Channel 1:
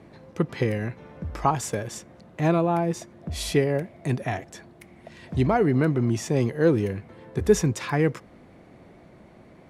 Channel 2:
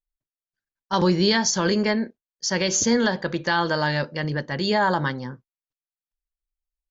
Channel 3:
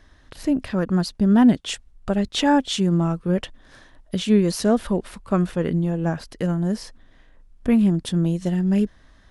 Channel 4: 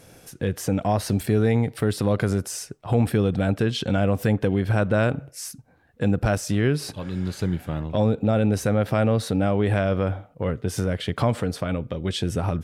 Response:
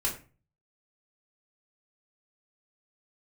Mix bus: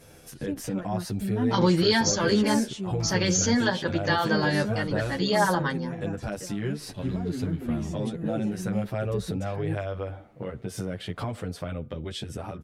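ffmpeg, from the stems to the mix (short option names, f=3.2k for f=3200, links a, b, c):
-filter_complex "[0:a]acrossover=split=420[a][b];[b]acompressor=threshold=-37dB:ratio=6[c];[a][c]amix=inputs=2:normalize=0,adelay=1650,volume=-6.5dB[d];[1:a]adelay=600,volume=0.5dB[e];[2:a]volume=-11dB[f];[3:a]acompressor=threshold=-32dB:ratio=2,volume=1dB[g];[d][e][f][g]amix=inputs=4:normalize=0,asplit=2[h][i];[i]adelay=9.6,afreqshift=-0.51[j];[h][j]amix=inputs=2:normalize=1"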